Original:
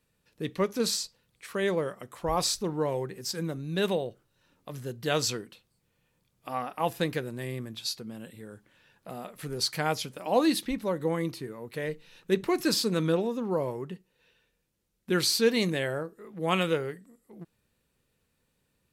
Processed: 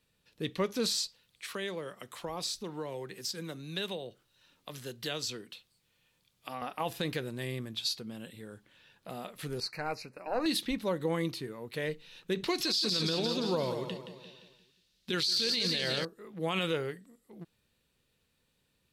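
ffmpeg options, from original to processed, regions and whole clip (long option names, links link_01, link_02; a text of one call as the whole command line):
ffmpeg -i in.wav -filter_complex "[0:a]asettb=1/sr,asplit=3[link_01][link_02][link_03];[link_01]atrim=end=1.034[link_04];[link_02]atrim=start=1.03:end=6.62,asetpts=PTS-STARTPTS,afade=type=in:duration=0.004:curve=qsin,afade=type=out:start_time=5.586:duration=0.004:curve=qsin,acrossover=split=130|470[link_05][link_06][link_07];[link_05]acompressor=threshold=-56dB:ratio=4[link_08];[link_06]acompressor=threshold=-35dB:ratio=4[link_09];[link_07]acompressor=threshold=-40dB:ratio=4[link_10];[link_08][link_09][link_10]amix=inputs=3:normalize=0,tiltshelf=frequency=900:gain=-3.5[link_11];[link_03]atrim=start=6.616[link_12];[link_04][link_11]acrossfade=duration=0.004:curve1=hsin:curve2=qsin[link_13];[link_13][link_12]acrossfade=duration=0.004:curve1=qsin:curve2=hsin,asettb=1/sr,asplit=3[link_14][link_15][link_16];[link_14]atrim=end=9.604[link_17];[link_15]atrim=start=9.6:end=10.46,asetpts=PTS-STARTPTS,afade=type=in:duration=0.004:curve=qsin,afade=type=out:start_time=0.856:duration=0.004:curve=qsin,bass=frequency=250:gain=-5,treble=frequency=4000:gain=-12,aeval=exprs='(tanh(6.31*val(0)+0.65)-tanh(0.65))/6.31':channel_layout=same,asuperstop=centerf=3300:order=8:qfactor=2.5[link_18];[link_16]atrim=start=10.456[link_19];[link_17][link_18]acrossfade=duration=0.004:curve1=hsin:curve2=qsin[link_20];[link_20][link_19]acrossfade=duration=0.004:curve1=qsin:curve2=hsin,asettb=1/sr,asplit=3[link_21][link_22][link_23];[link_21]atrim=end=12.444[link_24];[link_22]atrim=start=12.44:end=16.05,asetpts=PTS-STARTPTS,afade=type=in:duration=0.004:curve=qsin,afade=type=out:start_time=3.606:duration=0.004:curve=qsin,equalizer=frequency=4500:width=0.95:gain=13,aecho=1:1:173|346|519|692|865:0.355|0.163|0.0751|0.0345|0.0159,atrim=end_sample=159201[link_25];[link_23]atrim=start=16.046[link_26];[link_24][link_25]acrossfade=duration=0.004:curve1=hsin:curve2=qsin[link_27];[link_27][link_26]acrossfade=duration=0.004:curve1=qsin:curve2=hsin,equalizer=frequency=3600:width_type=o:width=1.1:gain=7,alimiter=limit=-19.5dB:level=0:latency=1:release=43,volume=-2dB" out.wav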